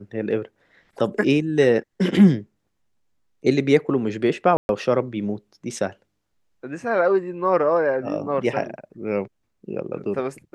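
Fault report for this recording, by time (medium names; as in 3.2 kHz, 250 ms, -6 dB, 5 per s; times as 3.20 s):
4.57–4.69 s: dropout 121 ms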